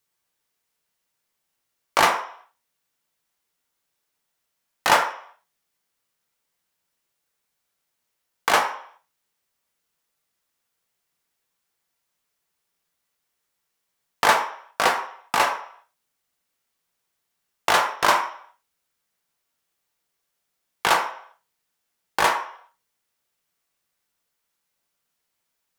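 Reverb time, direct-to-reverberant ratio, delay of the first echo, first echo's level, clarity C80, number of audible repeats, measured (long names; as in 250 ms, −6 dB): 0.60 s, 2.5 dB, no echo audible, no echo audible, 12.0 dB, no echo audible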